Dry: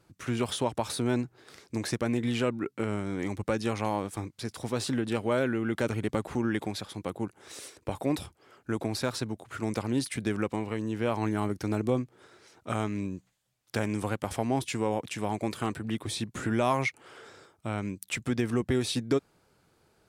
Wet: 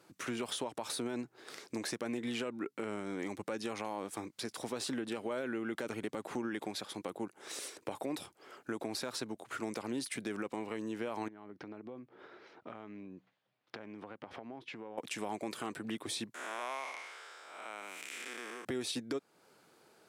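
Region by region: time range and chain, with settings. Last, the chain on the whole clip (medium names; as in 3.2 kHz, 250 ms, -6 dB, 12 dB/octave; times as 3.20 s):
11.28–14.98 s: distance through air 300 m + compression, threshold -44 dBFS
16.34–18.65 s: spectral blur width 309 ms + high-pass 800 Hz
whole clip: high-pass 250 Hz 12 dB/octave; peak limiter -22 dBFS; compression 2:1, threshold -45 dBFS; trim +3.5 dB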